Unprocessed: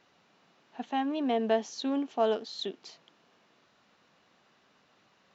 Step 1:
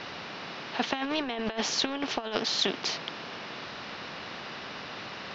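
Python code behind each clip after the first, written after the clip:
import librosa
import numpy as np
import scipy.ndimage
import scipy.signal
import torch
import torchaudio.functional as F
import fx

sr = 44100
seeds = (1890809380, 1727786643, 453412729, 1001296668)

y = scipy.signal.sosfilt(scipy.signal.cheby1(4, 1.0, 5300.0, 'lowpass', fs=sr, output='sos'), x)
y = fx.over_compress(y, sr, threshold_db=-34.0, ratio=-0.5)
y = fx.spectral_comp(y, sr, ratio=2.0)
y = y * librosa.db_to_amplitude(9.0)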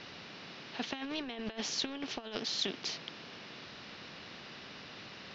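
y = fx.peak_eq(x, sr, hz=940.0, db=-7.0, octaves=2.1)
y = y * librosa.db_to_amplitude(-5.5)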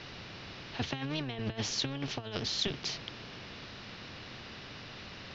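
y = fx.octave_divider(x, sr, octaves=1, level_db=2.0)
y = y * librosa.db_to_amplitude(1.5)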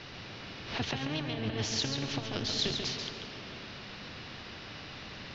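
y = x + 10.0 ** (-5.5 / 20.0) * np.pad(x, (int(138 * sr / 1000.0), 0))[:len(x)]
y = fx.rev_freeverb(y, sr, rt60_s=2.8, hf_ratio=0.6, predelay_ms=105, drr_db=8.0)
y = fx.pre_swell(y, sr, db_per_s=95.0)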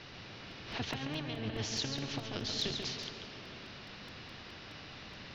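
y = fx.buffer_crackle(x, sr, first_s=0.51, period_s=0.21, block=128, kind='repeat')
y = y * librosa.db_to_amplitude(-4.0)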